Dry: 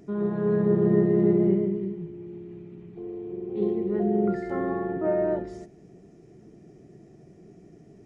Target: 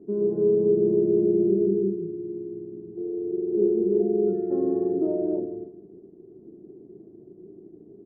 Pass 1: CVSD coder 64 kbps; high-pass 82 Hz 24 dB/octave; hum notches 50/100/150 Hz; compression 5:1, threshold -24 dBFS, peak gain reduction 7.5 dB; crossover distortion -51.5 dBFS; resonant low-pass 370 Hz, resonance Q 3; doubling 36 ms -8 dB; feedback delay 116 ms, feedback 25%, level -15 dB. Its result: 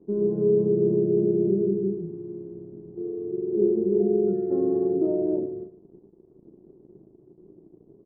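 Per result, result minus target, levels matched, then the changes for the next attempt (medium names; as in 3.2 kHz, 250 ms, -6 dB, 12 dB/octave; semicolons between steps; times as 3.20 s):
crossover distortion: distortion +10 dB; echo 47 ms early; 125 Hz band +4.0 dB
change: crossover distortion -62.5 dBFS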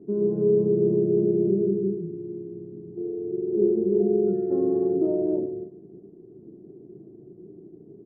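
echo 47 ms early; 125 Hz band +4.0 dB
change: feedback delay 163 ms, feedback 25%, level -15 dB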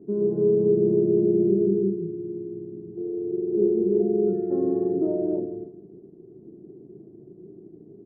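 125 Hz band +3.0 dB
add after resonant low-pass: peaking EQ 140 Hz -6.5 dB 0.81 oct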